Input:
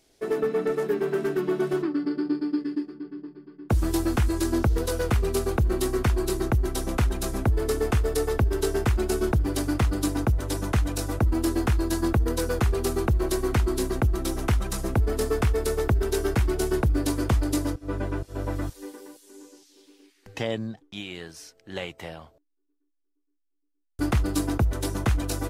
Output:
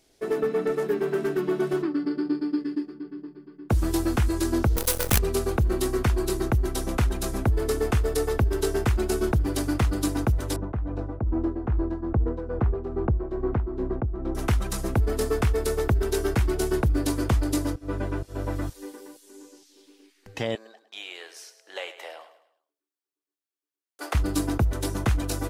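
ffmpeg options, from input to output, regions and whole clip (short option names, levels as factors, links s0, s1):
-filter_complex "[0:a]asettb=1/sr,asplit=3[s0][s1][s2];[s0]atrim=end=4.764[s3];[s1]atrim=start=4.76:end=5.19,asetpts=PTS-STARTPTS,afade=t=in:d=0.004:c=qsin,afade=t=out:st=0.426:d=0.004:c=qsin,aemphasis=mode=production:type=50fm,acrusher=bits=4:dc=4:mix=0:aa=0.000001[s4];[s2]atrim=start=5.186[s5];[s3][s4]acrossfade=d=0.004:c1=hsin:c2=qsin[s6];[s6][s5]acrossfade=d=0.004:c1=qsin:c2=hsin,asettb=1/sr,asplit=3[s7][s8][s9];[s7]atrim=end=10.564[s10];[s8]atrim=start=10.56:end=14.35,asetpts=PTS-STARTPTS,afade=t=in:d=0.004:c=qsin,afade=t=out:st=3.786:d=0.004:c=qsin,lowpass=1000,tremolo=f=2.4:d=0.53[s11];[s9]atrim=start=14.346[s12];[s10][s11]acrossfade=d=0.004:c1=hsin:c2=qsin[s13];[s13][s12]acrossfade=d=0.004:c1=qsin:c2=hsin,asettb=1/sr,asplit=3[s14][s15][s16];[s14]atrim=end=20.554[s17];[s15]atrim=start=20.55:end=24.15,asetpts=PTS-STARTPTS,afade=t=in:d=0.004:c=qsin,afade=t=out:st=3.596:d=0.004:c=qsin,highpass=f=480:w=0.5412,highpass=f=480:w=1.3066,aecho=1:1:105|210|315|420:0.224|0.0918|0.0376|0.0154,atrim=end_sample=158760[s18];[s16]atrim=start=24.146[s19];[s17][s18]acrossfade=d=0.004:c1=hsin:c2=qsin[s20];[s20][s19]acrossfade=d=0.004:c1=qsin:c2=hsin"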